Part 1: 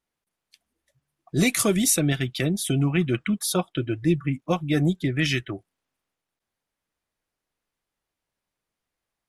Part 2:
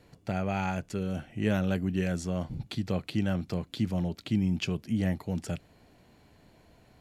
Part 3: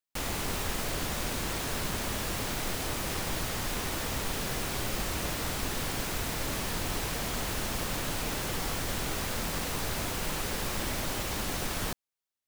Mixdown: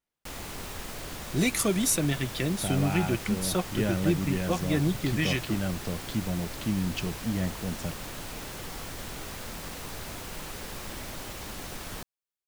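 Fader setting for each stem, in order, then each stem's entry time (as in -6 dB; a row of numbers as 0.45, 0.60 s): -4.5, -1.5, -6.0 dB; 0.00, 2.35, 0.10 s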